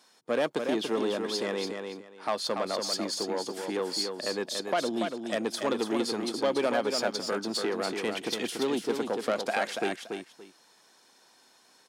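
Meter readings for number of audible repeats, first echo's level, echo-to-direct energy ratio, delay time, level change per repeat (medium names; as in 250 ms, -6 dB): 2, -5.5 dB, -5.5 dB, 286 ms, -13.5 dB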